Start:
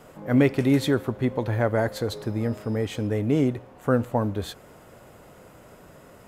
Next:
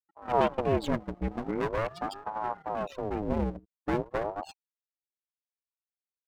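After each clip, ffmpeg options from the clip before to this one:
-af "afftfilt=real='re*gte(hypot(re,im),0.0398)':imag='im*gte(hypot(re,im),0.0398)':win_size=1024:overlap=0.75,aeval=exprs='max(val(0),0)':c=same,aeval=exprs='val(0)*sin(2*PI*520*n/s+520*0.65/0.42*sin(2*PI*0.42*n/s))':c=same"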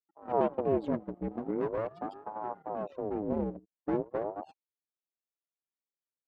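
-af "bandpass=f=360:t=q:w=0.77:csg=0"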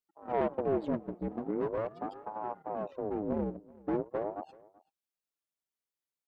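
-af "asoftclip=type=tanh:threshold=-20dB,aecho=1:1:381:0.0708"

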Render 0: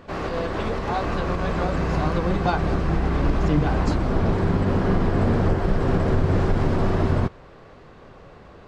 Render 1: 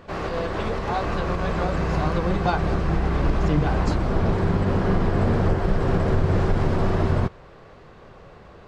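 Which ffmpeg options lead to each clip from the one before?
-af "equalizer=f=270:w=4.3:g=-4.5"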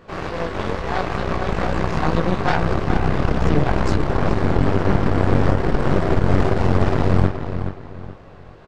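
-filter_complex "[0:a]flanger=delay=18:depth=4.7:speed=2.3,aeval=exprs='0.282*(cos(1*acos(clip(val(0)/0.282,-1,1)))-cos(1*PI/2))+0.126*(cos(4*acos(clip(val(0)/0.282,-1,1)))-cos(4*PI/2))':c=same,asplit=2[a][b];[b]adelay=424,lowpass=f=4.4k:p=1,volume=-8.5dB,asplit=2[c][d];[d]adelay=424,lowpass=f=4.4k:p=1,volume=0.33,asplit=2[e][f];[f]adelay=424,lowpass=f=4.4k:p=1,volume=0.33,asplit=2[g][h];[h]adelay=424,lowpass=f=4.4k:p=1,volume=0.33[i];[a][c][e][g][i]amix=inputs=5:normalize=0,volume=2.5dB"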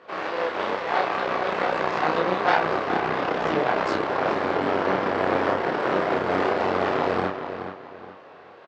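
-filter_complex "[0:a]highpass=430,lowpass=4.2k,asplit=2[a][b];[b]adelay=32,volume=-3.5dB[c];[a][c]amix=inputs=2:normalize=0"

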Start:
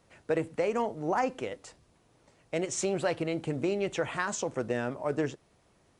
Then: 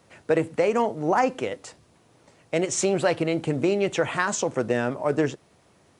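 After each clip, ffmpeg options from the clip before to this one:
-af "highpass=80,volume=7dB"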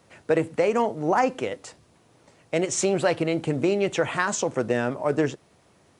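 -af anull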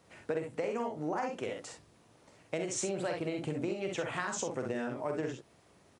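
-filter_complex "[0:a]asplit=2[a][b];[b]aecho=0:1:46|63:0.501|0.501[c];[a][c]amix=inputs=2:normalize=0,acompressor=threshold=-27dB:ratio=4,volume=-5.5dB"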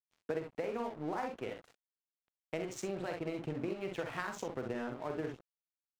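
-af "bandreject=f=570:w=17,adynamicsmooth=sensitivity=6.5:basefreq=2.9k,aeval=exprs='sgn(val(0))*max(abs(val(0))-0.00376,0)':c=same,volume=-1.5dB"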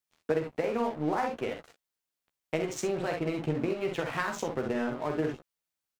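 -filter_complex "[0:a]asplit=2[a][b];[b]adelay=13,volume=-8dB[c];[a][c]amix=inputs=2:normalize=0,volume=7dB"

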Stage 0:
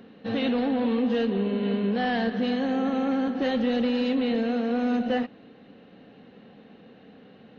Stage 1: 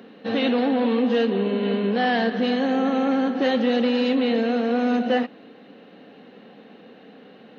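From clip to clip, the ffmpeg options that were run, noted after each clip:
-af "highpass=230,volume=5.5dB"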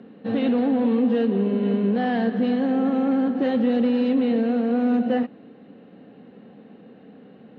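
-af "aemphasis=mode=reproduction:type=riaa,volume=-5dB"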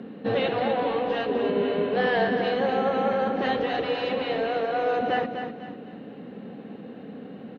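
-af "afftfilt=real='re*lt(hypot(re,im),0.447)':imag='im*lt(hypot(re,im),0.447)':win_size=1024:overlap=0.75,aecho=1:1:249|498|747|996:0.398|0.147|0.0545|0.0202,volume=5.5dB"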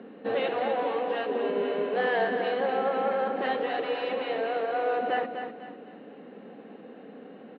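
-af "highpass=310,lowpass=3.1k,volume=-2dB"

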